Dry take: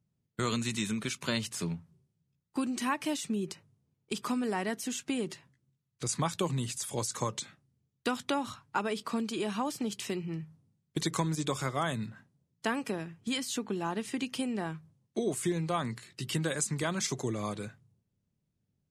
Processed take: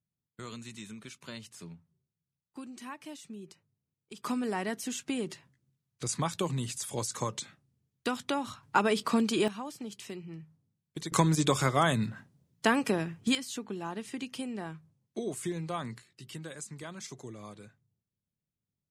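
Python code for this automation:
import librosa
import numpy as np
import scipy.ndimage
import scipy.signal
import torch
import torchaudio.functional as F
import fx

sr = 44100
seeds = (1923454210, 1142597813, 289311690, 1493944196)

y = fx.gain(x, sr, db=fx.steps((0.0, -12.0), (4.24, -0.5), (8.63, 6.0), (9.48, -7.0), (11.12, 6.0), (13.35, -4.0), (16.02, -11.0)))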